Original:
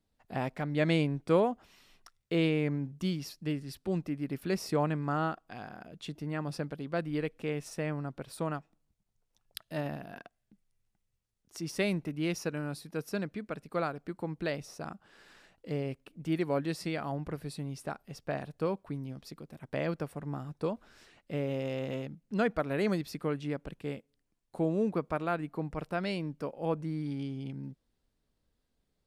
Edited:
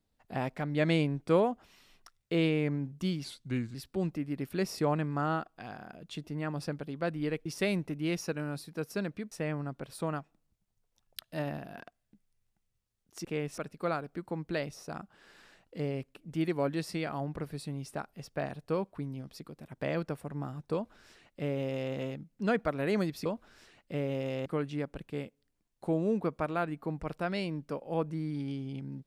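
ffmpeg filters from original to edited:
-filter_complex "[0:a]asplit=9[s0][s1][s2][s3][s4][s5][s6][s7][s8];[s0]atrim=end=3.244[s9];[s1]atrim=start=3.24:end=3.66,asetpts=PTS-STARTPTS,asetrate=36603,aresample=44100[s10];[s2]atrim=start=3.656:end=7.372[s11];[s3]atrim=start=11.628:end=13.492[s12];[s4]atrim=start=7.698:end=11.632[s13];[s5]atrim=start=7.368:end=7.702[s14];[s6]atrim=start=13.488:end=23.172[s15];[s7]atrim=start=20.648:end=21.852[s16];[s8]atrim=start=23.168[s17];[s9][s10]acrossfade=d=0.004:c1=hsin:c2=hsin[s18];[s18][s11]acrossfade=d=0.004:c1=hsin:c2=hsin[s19];[s19][s12]acrossfade=d=0.004:c1=hsin:c2=hsin[s20];[s20][s13]acrossfade=d=0.004:c1=hsin:c2=hsin[s21];[s21][s14]acrossfade=d=0.004:c1=hsin:c2=hsin[s22];[s22][s15]acrossfade=d=0.004:c1=hsin:c2=hsin[s23];[s23][s16]acrossfade=d=0.004:c1=hsin:c2=hsin[s24];[s24][s17]acrossfade=d=0.004:c1=hsin:c2=hsin"

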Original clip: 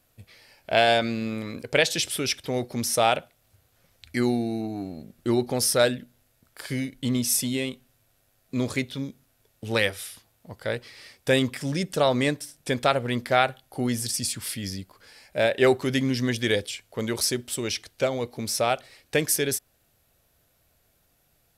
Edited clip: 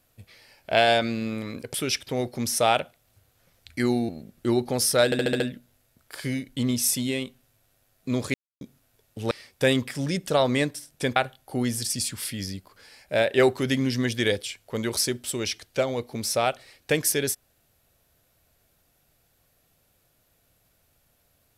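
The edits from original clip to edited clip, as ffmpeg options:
-filter_complex "[0:a]asplit=12[s0][s1][s2][s3][s4][s5][s6][s7][s8][s9][s10][s11];[s0]atrim=end=1.742[s12];[s1]atrim=start=2.108:end=4.462[s13];[s2]atrim=start=4.898:end=5.932[s14];[s3]atrim=start=5.858:end=5.932[s15];[s4]atrim=start=5.858:end=5.932[s16];[s5]atrim=start=5.858:end=5.932[s17];[s6]atrim=start=5.858:end=5.932[s18];[s7]atrim=start=5.858:end=8.8,asetpts=PTS-STARTPTS,afade=t=out:st=2.938:d=0.004:c=hsin[s19];[s8]atrim=start=8.8:end=9.07,asetpts=PTS-STARTPTS,volume=0[s20];[s9]atrim=start=9.07:end=9.772,asetpts=PTS-STARTPTS,afade=t=in:d=0.004:c=hsin[s21];[s10]atrim=start=10.968:end=12.822[s22];[s11]atrim=start=13.398[s23];[s12][s13]acrossfade=d=0.004:c1=hsin:c2=hsin[s24];[s24][s14]acrossfade=d=0.004:c1=hsin:c2=hsin[s25];[s25][s15]acrossfade=d=0.004:c1=hsin:c2=hsin[s26];[s26][s16]acrossfade=d=0.004:c1=hsin:c2=hsin[s27];[s27][s17]acrossfade=d=0.004:c1=hsin:c2=hsin[s28];[s28][s18]acrossfade=d=0.004:c1=hsin:c2=hsin[s29];[s19][s20][s21]concat=n=3:v=0:a=1[s30];[s29][s30]acrossfade=d=0.004:c1=hsin:c2=hsin[s31];[s31][s22]acrossfade=d=0.004:c1=hsin:c2=hsin[s32];[s32][s23]acrossfade=d=0.004:c1=hsin:c2=hsin"

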